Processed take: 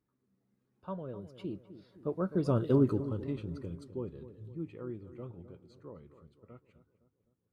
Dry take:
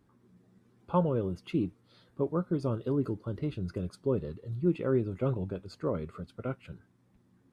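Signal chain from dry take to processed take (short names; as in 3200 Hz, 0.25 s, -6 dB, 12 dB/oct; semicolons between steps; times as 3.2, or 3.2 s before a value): Doppler pass-by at 2.7, 22 m/s, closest 5.5 m; on a send: darkening echo 0.256 s, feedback 53%, low-pass 1300 Hz, level -13 dB; on the sum: gain +4.5 dB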